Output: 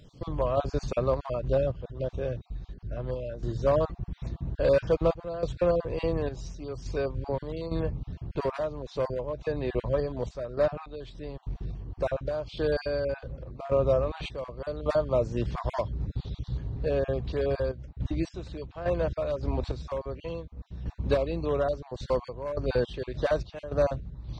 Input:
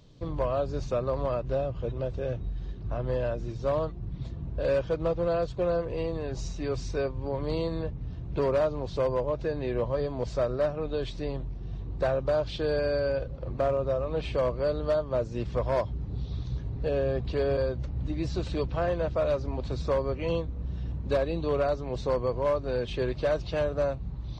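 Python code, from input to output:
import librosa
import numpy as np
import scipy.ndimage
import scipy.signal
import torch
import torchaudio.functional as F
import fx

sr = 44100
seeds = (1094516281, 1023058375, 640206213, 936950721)

y = fx.spec_dropout(x, sr, seeds[0], share_pct=20)
y = fx.tremolo_random(y, sr, seeds[1], hz=3.5, depth_pct=80)
y = y * librosa.db_to_amplitude(4.5)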